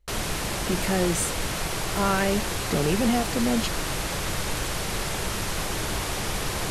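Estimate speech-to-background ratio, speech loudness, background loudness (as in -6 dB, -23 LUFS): 1.5 dB, -27.0 LUFS, -28.5 LUFS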